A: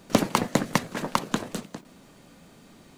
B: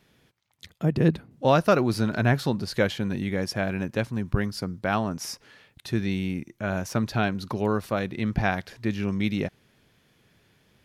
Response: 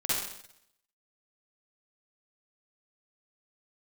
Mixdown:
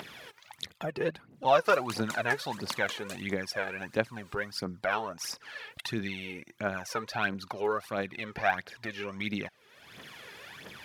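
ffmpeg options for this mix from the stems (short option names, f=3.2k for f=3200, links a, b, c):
-filter_complex "[0:a]adelay=1550,volume=-7.5dB[a];[1:a]highshelf=f=3k:g=-12,volume=2dB,asplit=2[b][c];[c]apad=whole_len=199738[d];[a][d]sidechaincompress=threshold=-24dB:ratio=8:attack=16:release=131[e];[e][b]amix=inputs=2:normalize=0,highpass=f=1.4k:p=1,acompressor=mode=upward:threshold=-32dB:ratio=2.5,aphaser=in_gain=1:out_gain=1:delay=2.5:decay=0.65:speed=1.5:type=triangular"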